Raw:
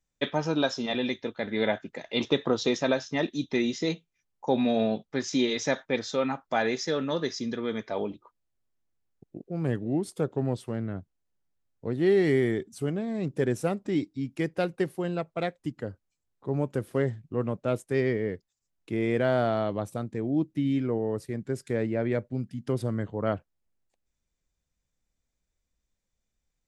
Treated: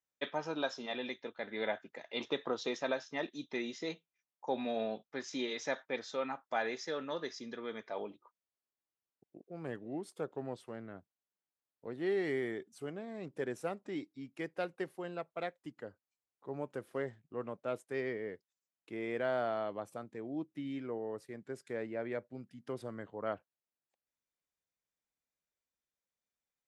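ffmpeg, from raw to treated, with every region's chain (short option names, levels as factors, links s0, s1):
-filter_complex "[0:a]asettb=1/sr,asplit=3[s0][s1][s2];[s0]atrim=end=19.394[s3];[s1]atrim=start=19.39:end=20.04,asetpts=PTS-STARTPTS,afade=t=in:d=0.004:c=qsin,afade=t=out:st=0.646:d=0.004:c=qsin,bandreject=f=3800:w=12,acompressor=mode=upward:threshold=0.0141:ratio=2.5:attack=3.2:release=140:knee=2.83:detection=peak,highpass=58[s4];[s2]atrim=start=20.036[s5];[s3][s4]acrossfade=d=0.004:c1=hsin:c2=qsin[s6];[s6][s5]acrossfade=d=0.004:c1=qsin:c2=hsin,highpass=f=870:p=1,highshelf=f=2600:g=-10,volume=0.708"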